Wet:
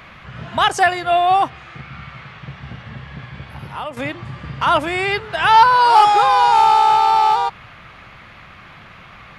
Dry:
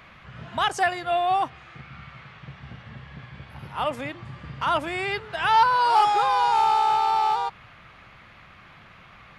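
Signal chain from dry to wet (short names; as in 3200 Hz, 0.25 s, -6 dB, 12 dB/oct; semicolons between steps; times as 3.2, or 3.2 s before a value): 3.48–3.97 compressor 3:1, threshold -36 dBFS, peak gain reduction 11 dB; gain +8 dB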